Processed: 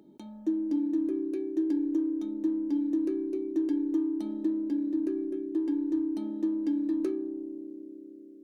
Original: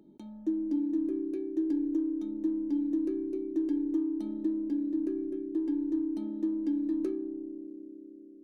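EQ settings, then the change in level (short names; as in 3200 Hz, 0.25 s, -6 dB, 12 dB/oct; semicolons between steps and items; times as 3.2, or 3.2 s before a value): HPF 66 Hz 6 dB/oct; bell 200 Hz -2.5 dB 2.2 oct; low shelf 370 Hz -3 dB; +5.5 dB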